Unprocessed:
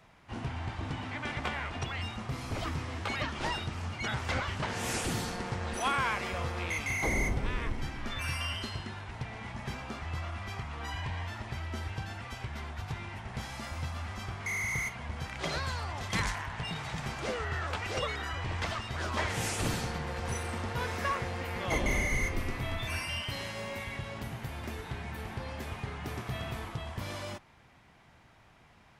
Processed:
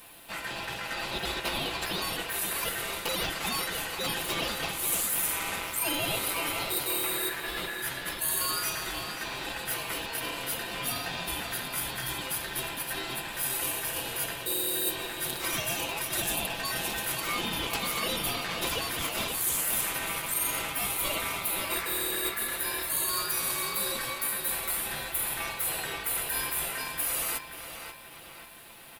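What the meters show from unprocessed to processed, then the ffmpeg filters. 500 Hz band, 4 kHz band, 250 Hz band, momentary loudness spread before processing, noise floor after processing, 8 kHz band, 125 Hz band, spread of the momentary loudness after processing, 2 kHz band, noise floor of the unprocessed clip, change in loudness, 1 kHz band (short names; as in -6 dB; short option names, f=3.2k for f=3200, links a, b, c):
+2.0 dB, +8.5 dB, -1.0 dB, 9 LU, -43 dBFS, +13.0 dB, -9.0 dB, 6 LU, +2.5 dB, -60 dBFS, +5.5 dB, +1.5 dB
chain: -filter_complex "[0:a]asplit=2[a][b];[b]asoftclip=type=tanh:threshold=-36dB,volume=-10dB[c];[a][c]amix=inputs=2:normalize=0,equalizer=f=12k:w=6.7:g=10.5,aecho=1:1:5.8:0.78,aexciter=amount=10.7:drive=7:freq=9.4k,areverse,acompressor=threshold=-31dB:ratio=6,areverse,lowshelf=f=250:g=-10.5,asplit=2[d][e];[e]adelay=533,lowpass=f=3.5k:p=1,volume=-6dB,asplit=2[f][g];[g]adelay=533,lowpass=f=3.5k:p=1,volume=0.48,asplit=2[h][i];[i]adelay=533,lowpass=f=3.5k:p=1,volume=0.48,asplit=2[j][k];[k]adelay=533,lowpass=f=3.5k:p=1,volume=0.48,asplit=2[l][m];[m]adelay=533,lowpass=f=3.5k:p=1,volume=0.48,asplit=2[n][o];[o]adelay=533,lowpass=f=3.5k:p=1,volume=0.48[p];[d][f][h][j][l][n][p]amix=inputs=7:normalize=0,aeval=exprs='val(0)*sin(2*PI*1700*n/s)':c=same,volume=7dB"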